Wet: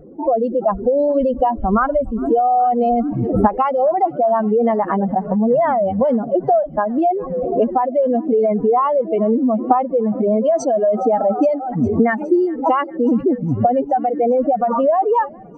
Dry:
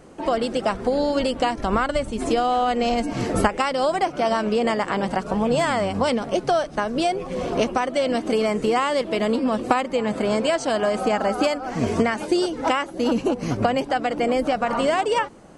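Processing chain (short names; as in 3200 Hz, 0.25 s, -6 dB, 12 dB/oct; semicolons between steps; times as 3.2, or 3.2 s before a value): spectral contrast raised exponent 2.7; thinning echo 0.412 s, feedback 81%, high-pass 810 Hz, level -23 dB; gain +6 dB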